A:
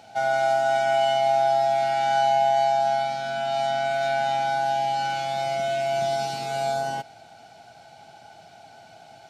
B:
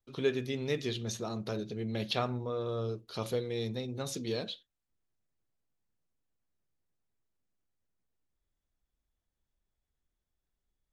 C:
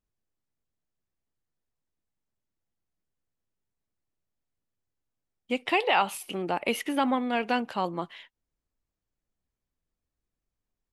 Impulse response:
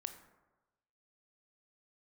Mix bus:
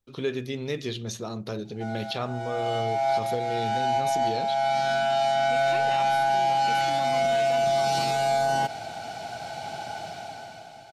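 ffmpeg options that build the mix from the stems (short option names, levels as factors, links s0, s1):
-filter_complex "[0:a]dynaudnorm=f=220:g=9:m=5.62,asoftclip=type=tanh:threshold=0.501,adelay=1650,volume=0.841[s0];[1:a]volume=1.41,asplit=2[s1][s2];[2:a]volume=0.596[s3];[s2]apad=whole_len=482472[s4];[s0][s4]sidechaincompress=threshold=0.0112:ratio=16:attack=9.9:release=663[s5];[s5][s1][s3]amix=inputs=3:normalize=0,alimiter=limit=0.133:level=0:latency=1:release=49"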